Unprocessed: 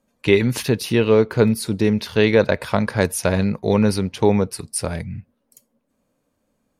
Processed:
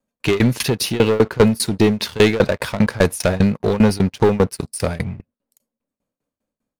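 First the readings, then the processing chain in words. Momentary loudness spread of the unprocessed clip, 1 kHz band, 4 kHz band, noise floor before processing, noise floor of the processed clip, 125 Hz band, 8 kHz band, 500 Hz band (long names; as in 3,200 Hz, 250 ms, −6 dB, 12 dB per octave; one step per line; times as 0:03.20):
9 LU, +2.0 dB, +4.0 dB, −71 dBFS, below −85 dBFS, +2.0 dB, +1.5 dB, +1.0 dB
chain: leveller curve on the samples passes 3
shaped tremolo saw down 5 Hz, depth 95%
pitch vibrato 0.31 Hz 6.1 cents
level −2 dB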